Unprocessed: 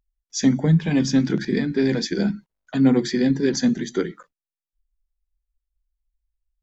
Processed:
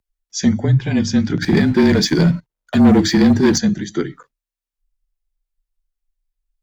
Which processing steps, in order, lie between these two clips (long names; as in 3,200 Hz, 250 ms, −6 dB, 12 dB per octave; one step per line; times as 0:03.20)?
0:01.42–0:03.58: leveller curve on the samples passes 2
frequency shifter −33 Hz
level +2.5 dB